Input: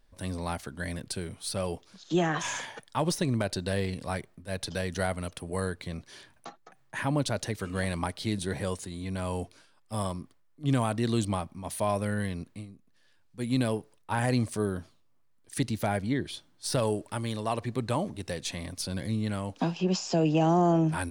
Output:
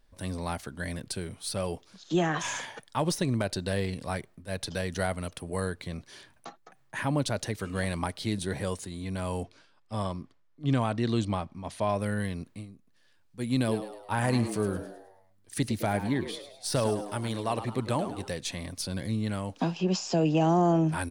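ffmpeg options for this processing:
ffmpeg -i in.wav -filter_complex "[0:a]asettb=1/sr,asplit=3[link_01][link_02][link_03];[link_01]atrim=end=9.434[link_04];[link_02]atrim=start=9.43:end=12,asetpts=PTS-STARTPTS,afade=type=in:duration=0.004:curve=qsin,afade=type=out:start_time=2.566:duration=0.004:curve=qsin,lowpass=5600[link_05];[link_03]atrim=start=11.996[link_06];[link_04][link_05]acrossfade=duration=0.004:curve1=hsin:curve2=qsin[link_07];[link_07][link_06]acrossfade=duration=0.004:curve1=qsin:curve2=hsin,asplit=3[link_08][link_09][link_10];[link_08]afade=type=out:start_time=13.67:duration=0.02[link_11];[link_09]asplit=6[link_12][link_13][link_14][link_15][link_16][link_17];[link_13]adelay=105,afreqshift=96,volume=-11dB[link_18];[link_14]adelay=210,afreqshift=192,volume=-17.6dB[link_19];[link_15]adelay=315,afreqshift=288,volume=-24.1dB[link_20];[link_16]adelay=420,afreqshift=384,volume=-30.7dB[link_21];[link_17]adelay=525,afreqshift=480,volume=-37.2dB[link_22];[link_12][link_18][link_19][link_20][link_21][link_22]amix=inputs=6:normalize=0,afade=type=in:start_time=13.67:duration=0.02,afade=type=out:start_time=18.27:duration=0.02[link_23];[link_10]afade=type=in:start_time=18.27:duration=0.02[link_24];[link_11][link_23][link_24]amix=inputs=3:normalize=0" out.wav

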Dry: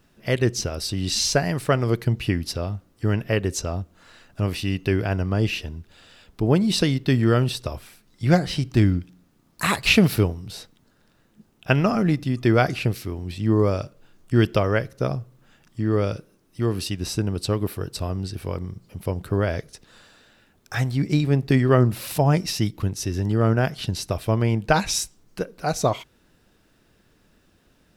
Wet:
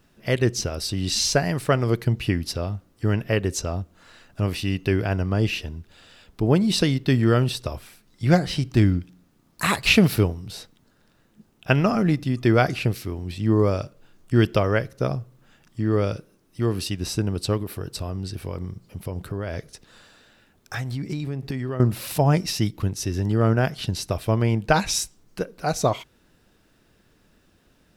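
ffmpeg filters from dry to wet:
ffmpeg -i in.wav -filter_complex "[0:a]asettb=1/sr,asplit=3[link_01][link_02][link_03];[link_01]atrim=end=17.574[link_04];[link_02]atrim=start=17.57:end=21.8,asetpts=PTS-STARTPTS,afade=type=in:duration=0.004:curve=qsin,afade=type=out:start_time=4.226:duration=0.004:curve=qsin,acompressor=threshold=-25dB:ratio=6:attack=3.2:release=140:knee=1:detection=peak[link_05];[link_03]atrim=start=21.796[link_06];[link_04][link_05]acrossfade=duration=0.004:curve1=hsin:curve2=qsin[link_07];[link_07][link_06]acrossfade=duration=0.004:curve1=qsin:curve2=hsin" out.wav

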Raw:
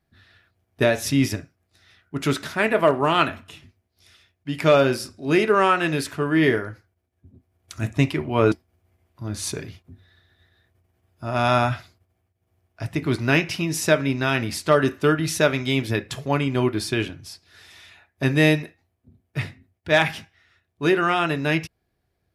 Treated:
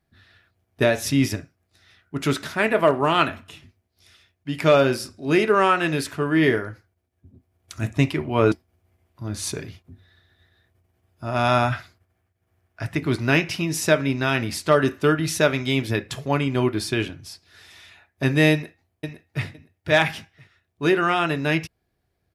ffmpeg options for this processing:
ffmpeg -i in.wav -filter_complex "[0:a]asettb=1/sr,asplit=3[link_01][link_02][link_03];[link_01]atrim=end=11.724[link_04];[link_02]atrim=start=11.72:end=12.98,asetpts=PTS-STARTPTS,afade=type=in:duration=0.004:curve=qsin,afade=type=out:start_time=1.256:duration=0.004:curve=qsin,equalizer=frequency=1600:width=1.5:gain=6.5[link_05];[link_03]atrim=start=12.976[link_06];[link_04][link_05]acrossfade=duration=0.004:curve1=hsin:curve2=qsin[link_07];[link_07][link_06]acrossfade=duration=0.004:curve1=qsin:curve2=hsin,asplit=2[link_08][link_09];[link_09]afade=type=in:start_time=18.52:duration=0.01,afade=type=out:start_time=19.45:duration=0.01,aecho=0:1:510|1020:0.398107|0.0597161[link_10];[link_08][link_10]amix=inputs=2:normalize=0" out.wav

